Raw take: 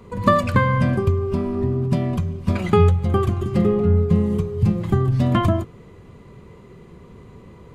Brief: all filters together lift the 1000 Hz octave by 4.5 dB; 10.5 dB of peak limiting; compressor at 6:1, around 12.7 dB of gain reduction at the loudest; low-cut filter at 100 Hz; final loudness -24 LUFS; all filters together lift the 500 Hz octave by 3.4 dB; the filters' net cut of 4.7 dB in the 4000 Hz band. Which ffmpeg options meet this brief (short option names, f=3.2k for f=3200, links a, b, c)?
-af "highpass=100,equalizer=f=500:t=o:g=3.5,equalizer=f=1k:t=o:g=5,equalizer=f=4k:t=o:g=-7,acompressor=threshold=-21dB:ratio=6,volume=3.5dB,alimiter=limit=-15.5dB:level=0:latency=1"